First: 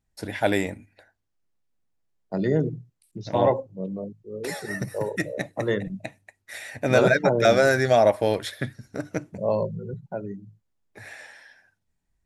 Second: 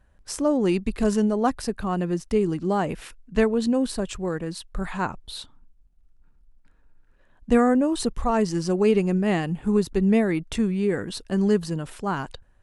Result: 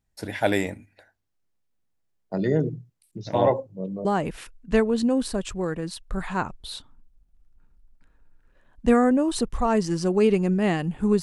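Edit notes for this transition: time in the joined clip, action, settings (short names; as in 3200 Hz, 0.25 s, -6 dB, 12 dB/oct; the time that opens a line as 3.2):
first
4.05 switch to second from 2.69 s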